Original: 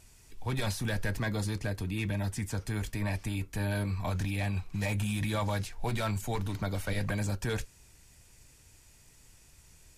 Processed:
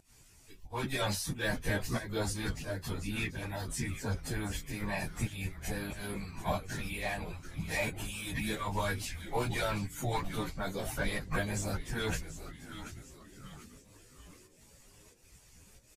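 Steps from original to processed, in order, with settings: volume shaper 146 bpm, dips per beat 1, -16 dB, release 131 ms; on a send: frequency-shifting echo 460 ms, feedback 46%, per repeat -130 Hz, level -10.5 dB; on the sum: harmonic-percussive split harmonic -14 dB; plain phase-vocoder stretch 1.6×; trim +6 dB

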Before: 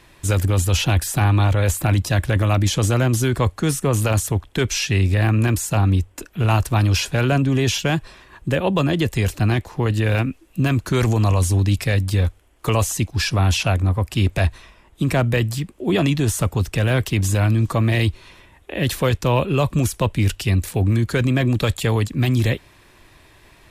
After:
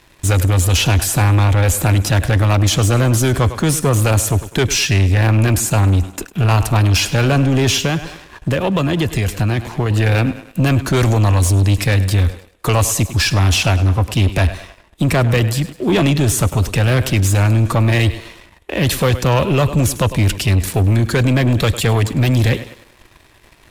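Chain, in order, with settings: thinning echo 102 ms, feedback 53%, high-pass 160 Hz, level -16 dB; 7.85–9.91 s: compression, threshold -19 dBFS, peak gain reduction 5.5 dB; waveshaping leveller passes 2

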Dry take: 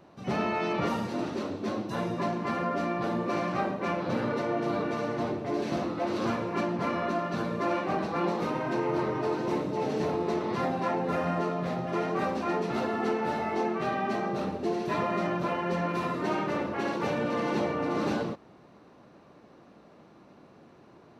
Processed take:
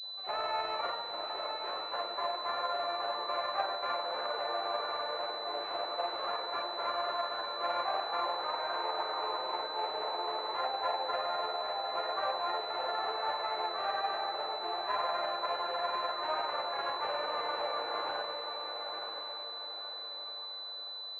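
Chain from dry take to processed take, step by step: high-pass 620 Hz 24 dB/octave; granulator 100 ms, spray 22 ms, pitch spread up and down by 0 st; on a send: echo that smears into a reverb 987 ms, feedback 43%, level -6 dB; on the sum: class-D stage that switches slowly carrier 4 kHz

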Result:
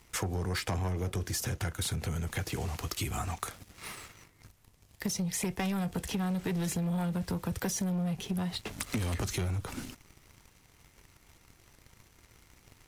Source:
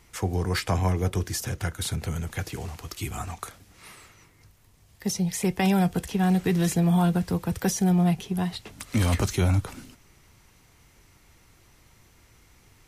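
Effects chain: waveshaping leveller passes 2; compression 6:1, threshold -29 dBFS, peak gain reduction 12 dB; trim -2 dB

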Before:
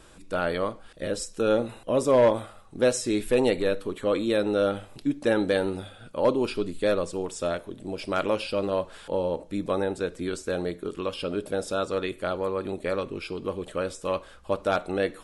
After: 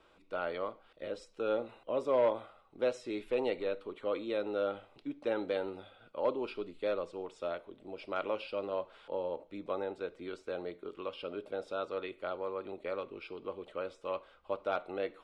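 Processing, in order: three-band isolator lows -12 dB, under 330 Hz, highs -23 dB, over 3.9 kHz; band-stop 1.7 kHz, Q 6.6; trim -8 dB

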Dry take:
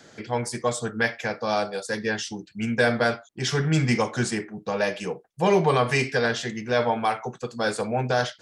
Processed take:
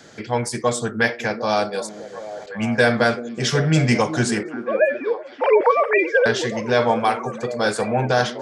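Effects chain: 1.89–2.46 s: room tone; 4.43–6.26 s: formants replaced by sine waves; repeats whose band climbs or falls 376 ms, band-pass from 300 Hz, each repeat 0.7 oct, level -7 dB; trim +4.5 dB

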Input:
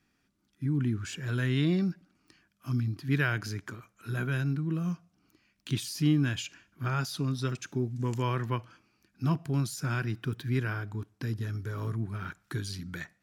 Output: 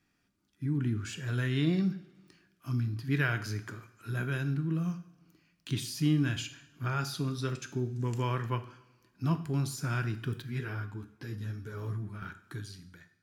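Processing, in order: fade out at the end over 1.24 s; two-slope reverb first 0.56 s, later 1.7 s, from -17 dB, DRR 8 dB; 10.42–12.22 s: three-phase chorus; trim -2 dB

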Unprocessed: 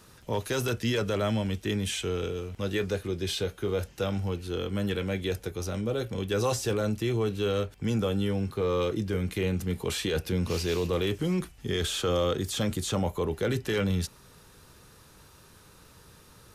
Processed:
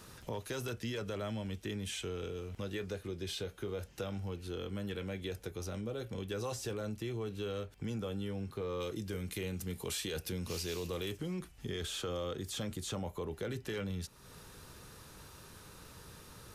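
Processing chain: 8.80–11.17 s: treble shelf 4.2 kHz +10 dB; compression 2.5:1, threshold -43 dBFS, peak gain reduction 13 dB; trim +1 dB

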